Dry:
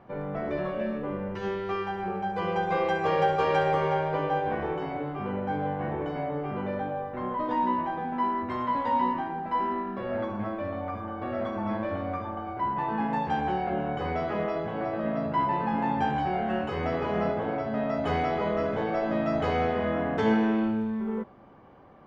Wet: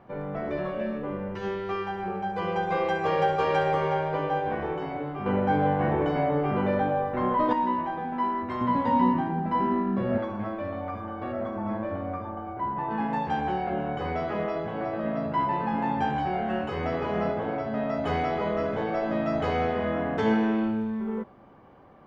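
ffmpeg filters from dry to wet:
-filter_complex "[0:a]asettb=1/sr,asplit=3[s0][s1][s2];[s0]atrim=end=5.264[s3];[s1]atrim=start=5.26:end=7.53,asetpts=PTS-STARTPTS,afade=t=in:d=0.004:c=qsin,afade=t=out:st=2.266:d=0.004:c=qsin,acontrast=61[s4];[s2]atrim=start=7.526[s5];[s3][s4]acrossfade=d=0.004:c1=hsin:c2=qsin[s6];[s6][s5]acrossfade=d=0.004:c1=qsin:c2=hsin,asettb=1/sr,asplit=3[s7][s8][s9];[s7]atrim=end=8.614[s10];[s8]atrim=start=8.61:end=10.18,asetpts=PTS-STARTPTS,afade=t=in:d=0.004:c=qsin,afade=t=out:st=1.566:d=0.004:c=qsin,equalizer=f=160:t=o:w=1.9:g=13[s11];[s9]atrim=start=10.176[s12];[s10][s11]acrossfade=d=0.004:c1=hsin:c2=qsin[s13];[s13][s12]acrossfade=d=0.004:c1=qsin:c2=hsin,asettb=1/sr,asplit=3[s14][s15][s16];[s14]atrim=end=11.324[s17];[s15]atrim=start=11.32:end=12.91,asetpts=PTS-STARTPTS,afade=t=in:d=0.004:c=qsin,afade=t=out:st=1.586:d=0.004:c=qsin,equalizer=f=4600:t=o:w=2.3:g=-9[s18];[s16]atrim=start=12.906[s19];[s17][s18]acrossfade=d=0.004:c1=hsin:c2=qsin[s20];[s20][s19]acrossfade=d=0.004:c1=qsin:c2=hsin"

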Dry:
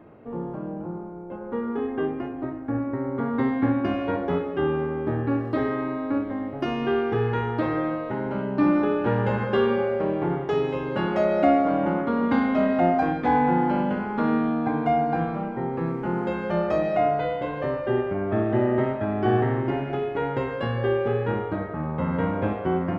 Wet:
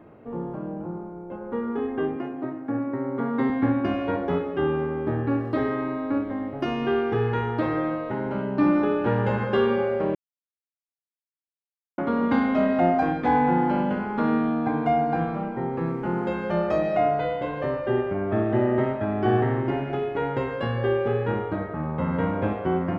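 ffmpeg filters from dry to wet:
-filter_complex "[0:a]asettb=1/sr,asplit=3[s0][s1][s2];[s0]atrim=end=2.164[s3];[s1]atrim=start=2.16:end=3.5,asetpts=PTS-STARTPTS,afade=t=in:d=0.004:c=qsin,afade=t=out:st=1.336:d=0.004:c=qsin,highpass=f=130:w=0.5412,highpass=f=130:w=1.3066[s4];[s2]atrim=start=3.496[s5];[s3][s4]acrossfade=d=0.004:c1=hsin:c2=qsin[s6];[s6][s5]acrossfade=d=0.004:c1=qsin:c2=hsin,asplit=3[s7][s8][s9];[s7]atrim=end=10.15,asetpts=PTS-STARTPTS,afade=t=out:st=10.146:d=0.004:c=hsin[s10];[s8]atrim=start=10.15:end=11.98,asetpts=PTS-STARTPTS,volume=0[s11];[s9]atrim=start=11.98,asetpts=PTS-STARTPTS,afade=t=in:d=0.004:c=hsin[s12];[s10][s11][s12]concat=n=3:v=0:a=1"

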